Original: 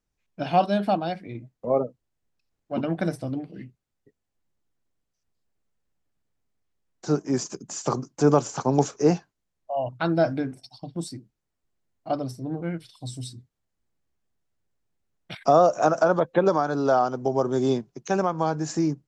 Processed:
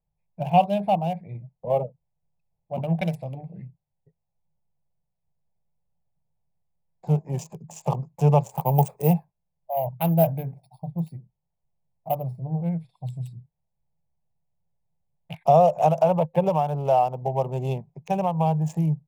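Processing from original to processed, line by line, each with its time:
3.01–3.41 s: frequency weighting D
8.51–12.38 s: careless resampling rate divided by 3×, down filtered, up hold
whole clip: local Wiener filter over 15 samples; FFT filter 110 Hz 0 dB, 160 Hz +8 dB, 280 Hz -20 dB, 520 Hz -2 dB, 890 Hz +3 dB, 1.4 kHz -21 dB, 2.7 kHz +6 dB, 4.2 kHz -11 dB, 6.6 kHz -8 dB, 12 kHz +9 dB; trim +1.5 dB

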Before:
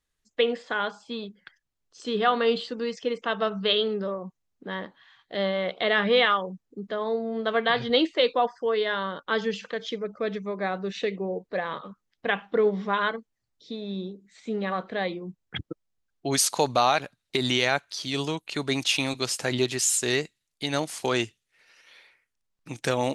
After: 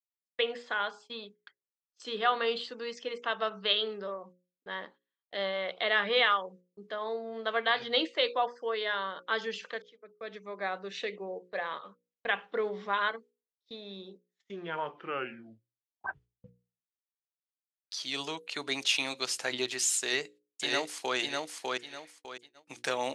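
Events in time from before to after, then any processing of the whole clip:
9.82–10.63 s: fade in linear
14.10 s: tape stop 3.77 s
19.99–21.17 s: echo throw 600 ms, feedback 30%, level -2 dB
whole clip: frequency weighting A; gate -48 dBFS, range -34 dB; hum notches 60/120/180/240/300/360/420/480/540 Hz; trim -4 dB

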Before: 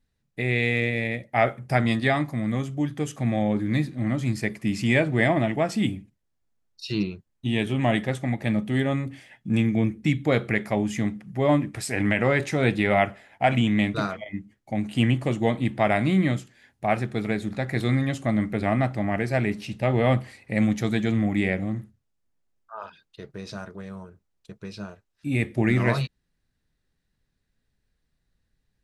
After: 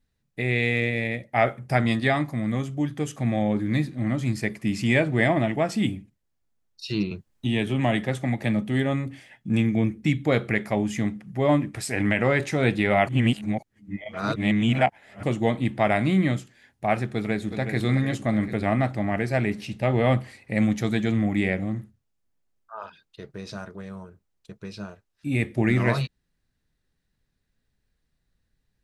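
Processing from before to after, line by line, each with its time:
7.11–8.62 s: three bands compressed up and down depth 40%
13.07–15.23 s: reverse
17.09–17.79 s: echo throw 370 ms, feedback 55%, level -8.5 dB

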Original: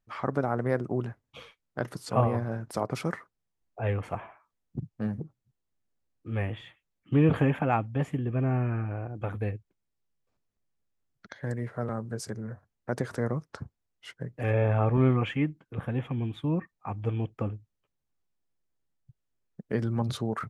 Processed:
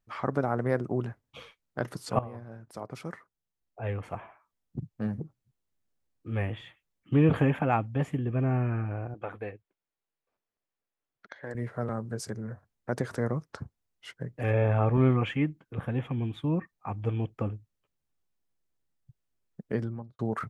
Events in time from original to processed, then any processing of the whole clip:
2.19–5.23 s: fade in, from -16 dB
9.14–11.55 s: tone controls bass -15 dB, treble -10 dB
19.63–20.19 s: studio fade out

